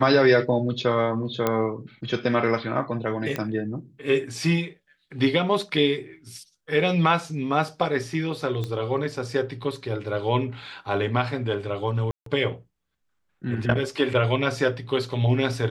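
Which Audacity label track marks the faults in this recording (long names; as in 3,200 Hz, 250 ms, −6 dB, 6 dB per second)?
1.470000	1.470000	click −9 dBFS
3.360000	3.360000	click −13 dBFS
8.640000	8.640000	click −18 dBFS
12.110000	12.260000	drop-out 153 ms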